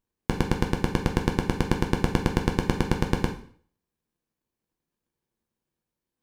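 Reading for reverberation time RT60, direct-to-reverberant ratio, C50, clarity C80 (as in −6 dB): 0.50 s, 2.5 dB, 9.5 dB, 14.0 dB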